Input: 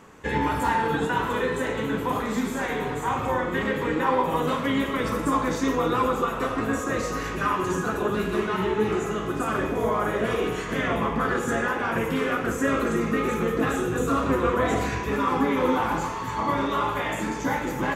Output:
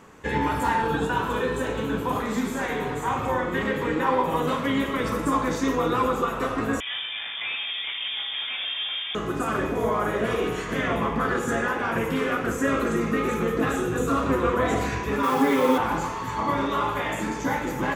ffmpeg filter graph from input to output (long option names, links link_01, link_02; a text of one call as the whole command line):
ffmpeg -i in.wav -filter_complex "[0:a]asettb=1/sr,asplit=3[link_01][link_02][link_03];[link_01]atrim=end=0.824[link_04];[link_02]atrim=start=0.82:end=2.16,asetpts=PTS-STARTPTS,afade=type=in:duration=0.004:curve=qsin,afade=type=out:start_time=1.336:duration=0.004:curve=qsin,aeval=exprs='sgn(val(0))*max(abs(val(0))-0.0015,0)':channel_layout=same,aeval=exprs='val(0)+0.0112*(sin(2*PI*60*n/s)+sin(2*PI*2*60*n/s)/2+sin(2*PI*3*60*n/s)/3+sin(2*PI*4*60*n/s)/4+sin(2*PI*5*60*n/s)/5)':channel_layout=same,bandreject=frequency=2000:width=6.8[link_05];[link_03]atrim=start=2.156[link_06];[link_04][link_05]acrossfade=duration=0.004:curve1=hsin:curve2=qsin[link_07];[link_07][link_06]acrossfade=duration=0.004:curve1=qsin:curve2=hsin,asettb=1/sr,asplit=3[link_08][link_09][link_10];[link_08]atrim=end=6.804[link_11];[link_09]atrim=start=6.8:end=9.15,asetpts=PTS-STARTPTS,afade=type=in:duration=0.004:curve=qsin,afade=type=out:start_time=2.346:duration=0.004:curve=qsin,aeval=exprs='(tanh(22.4*val(0)+0.55)-tanh(0.55))/22.4':channel_layout=same,acrusher=bits=7:mix=0:aa=0.5,lowpass=frequency=3100:width_type=q:width=0.5098,lowpass=frequency=3100:width_type=q:width=0.6013,lowpass=frequency=3100:width_type=q:width=0.9,lowpass=frequency=3100:width_type=q:width=2.563,afreqshift=-3600[link_12];[link_10]atrim=start=9.146[link_13];[link_11][link_12]acrossfade=duration=0.004:curve1=hsin:curve2=qsin[link_14];[link_14][link_13]acrossfade=duration=0.004:curve1=qsin:curve2=hsin,asettb=1/sr,asplit=3[link_15][link_16][link_17];[link_15]atrim=end=15.234[link_18];[link_16]atrim=start=15.23:end=15.78,asetpts=PTS-STARTPTS,afade=type=in:duration=0.004:curve=qsin,afade=type=out:start_time=0.546:duration=0.004:curve=qsin,highpass=frequency=260:poles=1,aecho=1:1:7.5:0.98,atrim=end_sample=24255,acrusher=bits=7:dc=4:mix=0:aa=0.000001[link_19];[link_17]atrim=start=15.776[link_20];[link_18][link_19]acrossfade=duration=0.004:curve1=hsin:curve2=qsin[link_21];[link_21][link_20]acrossfade=duration=0.004:curve1=qsin:curve2=hsin" out.wav